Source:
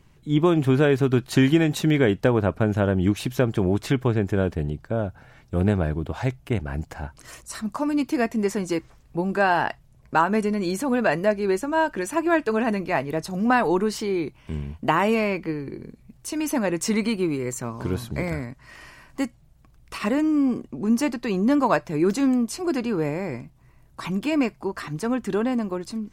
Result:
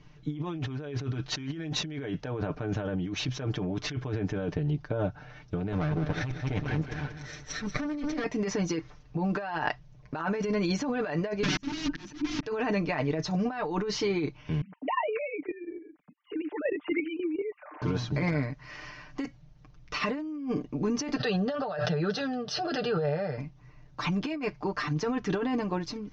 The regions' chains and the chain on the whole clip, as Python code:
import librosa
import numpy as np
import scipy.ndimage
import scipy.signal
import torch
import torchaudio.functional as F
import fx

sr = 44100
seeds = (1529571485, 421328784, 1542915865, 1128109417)

y = fx.chain(x, sr, fx.lower_of_two(delay_ms=0.53),
    fx.echo_feedback(ms=187, feedback_pct=43, wet_db=-11.0), at=(5.72, 8.24))
y = fx.chain(y, sr, fx.overflow_wrap(gain_db=25.0),
    fx.low_shelf_res(hz=390.0, db=10.0, q=3.0),
    fx.auto_swell(attack_ms=534.0), at=(11.43, 12.43))
y = fx.chain(y, sr, fx.sine_speech(),
    fx.lowpass(hz=2900.0, slope=6),
    fx.level_steps(step_db=12), at=(14.61, 17.82))
y = fx.chain(y, sr, fx.highpass(hz=120.0, slope=12),
    fx.fixed_phaser(hz=1500.0, stages=8),
    fx.pre_swell(db_per_s=22.0), at=(21.16, 23.38))
y = scipy.signal.sosfilt(scipy.signal.ellip(4, 1.0, 40, 6100.0, 'lowpass', fs=sr, output='sos'), y)
y = y + 0.75 * np.pad(y, (int(6.7 * sr / 1000.0), 0))[:len(y)]
y = fx.over_compress(y, sr, threshold_db=-26.0, ratio=-1.0)
y = F.gain(torch.from_numpy(y), -4.0).numpy()